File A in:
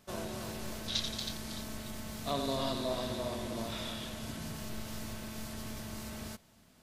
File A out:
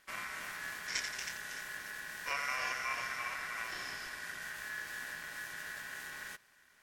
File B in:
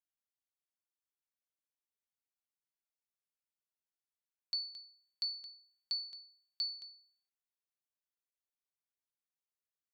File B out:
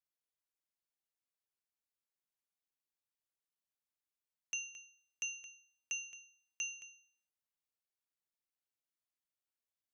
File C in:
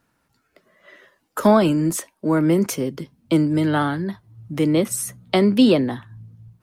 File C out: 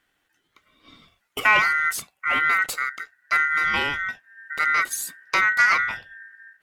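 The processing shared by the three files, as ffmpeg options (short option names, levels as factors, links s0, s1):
-af "aeval=exprs='clip(val(0),-1,0.2)':c=same,aeval=exprs='val(0)*sin(2*PI*1700*n/s)':c=same"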